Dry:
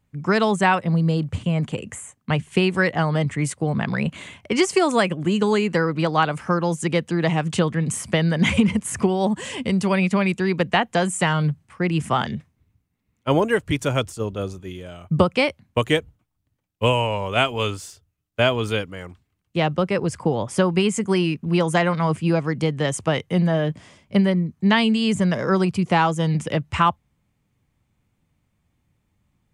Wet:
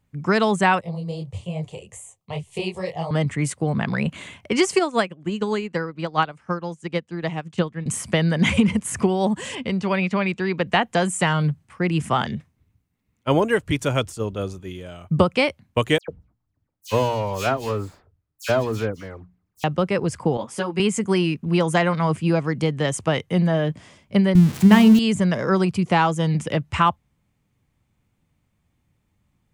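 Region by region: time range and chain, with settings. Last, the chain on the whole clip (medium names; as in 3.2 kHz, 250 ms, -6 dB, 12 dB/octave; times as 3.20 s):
0.81–3.11 s: static phaser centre 620 Hz, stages 4 + detune thickener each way 58 cents
4.79–7.86 s: low-pass 8.1 kHz + upward expansion 2.5:1, over -27 dBFS
9.55–10.67 s: de-esser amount 65% + low-pass 4.8 kHz + bass shelf 330 Hz -4.5 dB
15.98–19.64 s: median filter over 15 samples + hum notches 60/120/180/240 Hz + phase dispersion lows, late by 103 ms, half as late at 2.9 kHz
20.37–20.80 s: high-pass 240 Hz 6 dB/octave + three-phase chorus
24.35–24.99 s: zero-crossing glitches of -11 dBFS + RIAA curve playback + de-hum 66.1 Hz, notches 21
whole clip: none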